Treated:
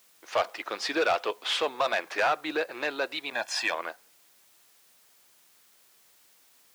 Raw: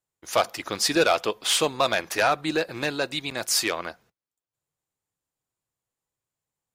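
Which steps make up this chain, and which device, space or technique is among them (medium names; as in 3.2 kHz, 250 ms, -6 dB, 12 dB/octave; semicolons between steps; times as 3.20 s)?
tape answering machine (band-pass 390–3100 Hz; saturation -17.5 dBFS, distortion -14 dB; wow and flutter; white noise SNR 29 dB); high-pass 220 Hz 6 dB/octave; 3.33–3.74 s: comb 1.2 ms, depth 84%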